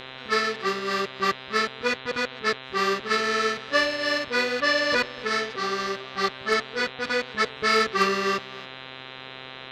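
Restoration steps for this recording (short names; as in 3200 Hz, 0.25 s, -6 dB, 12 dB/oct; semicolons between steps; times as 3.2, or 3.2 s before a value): de-hum 130.9 Hz, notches 31; inverse comb 0.279 s -19.5 dB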